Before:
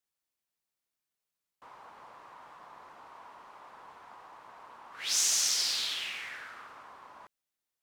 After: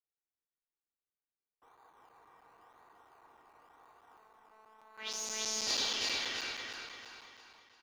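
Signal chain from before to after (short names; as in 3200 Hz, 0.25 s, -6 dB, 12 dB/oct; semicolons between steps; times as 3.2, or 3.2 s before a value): resonator 470 Hz, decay 0.5 s, mix 80%; low-pass opened by the level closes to 1900 Hz, open at -40 dBFS; comb 2.6 ms, depth 46%; in parallel at -10 dB: decimation with a swept rate 23×, swing 60% 0.96 Hz; 4.97–6.55 on the sum: spectral gain 220–7100 Hz +10 dB; overloaded stage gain 22.5 dB; 4.17–5.67 robotiser 218 Hz; limiter -22.5 dBFS, peak gain reduction 10 dB; on a send: feedback echo 0.339 s, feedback 46%, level -3 dB; on the sum: crackling interface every 0.16 s, samples 256, zero, from 0.33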